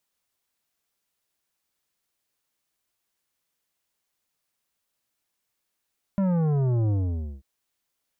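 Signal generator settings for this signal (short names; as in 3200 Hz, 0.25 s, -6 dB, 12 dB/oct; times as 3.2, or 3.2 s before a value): sub drop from 200 Hz, over 1.24 s, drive 11 dB, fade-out 0.52 s, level -21.5 dB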